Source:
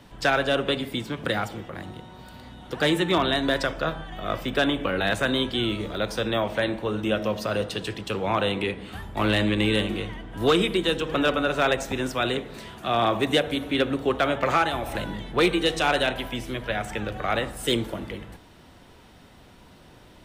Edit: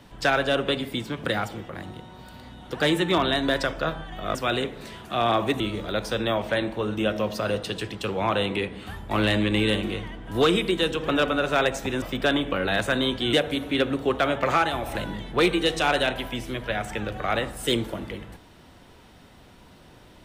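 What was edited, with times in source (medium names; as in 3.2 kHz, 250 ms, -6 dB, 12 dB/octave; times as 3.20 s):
4.35–5.66 s: swap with 12.08–13.33 s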